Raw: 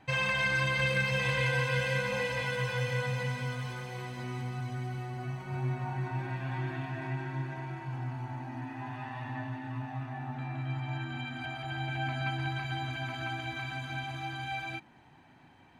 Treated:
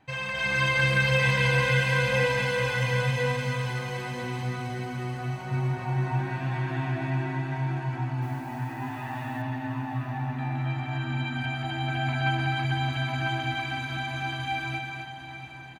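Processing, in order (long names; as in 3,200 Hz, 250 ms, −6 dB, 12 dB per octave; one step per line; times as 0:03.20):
single-tap delay 254 ms −5 dB
0:08.22–0:09.42: bit-depth reduction 10 bits, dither none
automatic gain control gain up to 8 dB
feedback delay with all-pass diffusion 747 ms, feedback 43%, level −10.5 dB
level −3.5 dB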